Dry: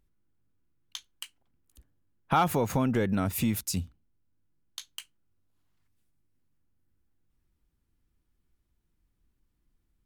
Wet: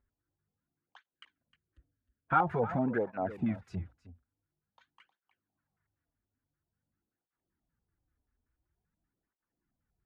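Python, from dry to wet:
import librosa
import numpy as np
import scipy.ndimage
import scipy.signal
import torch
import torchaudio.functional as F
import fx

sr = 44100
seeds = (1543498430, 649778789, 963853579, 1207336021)

p1 = fx.filter_lfo_lowpass(x, sr, shape='square', hz=5.2, low_hz=750.0, high_hz=1600.0, q=3.1)
p2 = fx.peak_eq(p1, sr, hz=860.0, db=-13.5, octaves=0.82, at=(1.09, 2.33))
p3 = p2 + fx.echo_single(p2, sr, ms=311, db=-15.5, dry=0)
p4 = fx.flanger_cancel(p3, sr, hz=0.48, depth_ms=6.4)
y = F.gain(torch.from_numpy(p4), -4.0).numpy()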